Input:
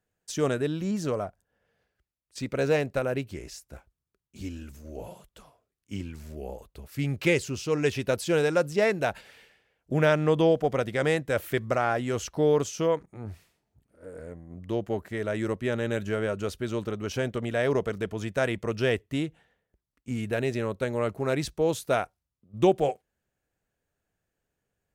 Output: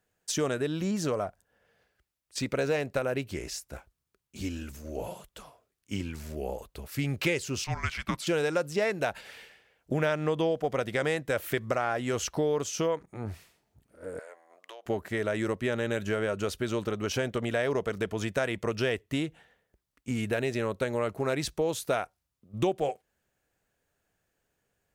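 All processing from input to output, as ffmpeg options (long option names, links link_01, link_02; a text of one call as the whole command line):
ffmpeg -i in.wav -filter_complex "[0:a]asettb=1/sr,asplit=3[link_01][link_02][link_03];[link_01]atrim=end=7.644[link_04];[link_02]atrim=start=7.64:end=8.27,asetpts=PTS-STARTPTS,afade=type=in:duration=0.004:curve=qsin,afade=type=out:start_time=0.626:duration=0.004:curve=qsin,highpass=620,highshelf=frequency=4100:gain=-11,afreqshift=-340[link_05];[link_03]atrim=start=8.266[link_06];[link_04][link_05]acrossfade=duration=0.004:curve1=hsin:curve2=qsin[link_07];[link_07][link_06]acrossfade=duration=0.004:curve1=qsin:curve2=hsin,asettb=1/sr,asplit=3[link_08][link_09][link_10];[link_08]atrim=end=14.194[link_11];[link_09]atrim=start=14.19:end=14.86,asetpts=PTS-STARTPTS,afade=type=in:duration=0.004:curve=qsin,afade=type=out:start_time=0.666:duration=0.004:curve=qsin,highpass=frequency=630:width=0.5412,highpass=frequency=630:width=1.3066,highshelf=frequency=10000:gain=-4.5,acompressor=threshold=-46dB:ratio=16:attack=3.2:release=140:knee=1:detection=peak[link_12];[link_10]atrim=start=14.856[link_13];[link_11][link_12]acrossfade=duration=0.004:curve1=hsin:curve2=qsin[link_14];[link_14][link_13]acrossfade=duration=0.004:curve1=qsin:curve2=hsin,lowshelf=frequency=370:gain=-5,acompressor=threshold=-33dB:ratio=3,volume=6dB" out.wav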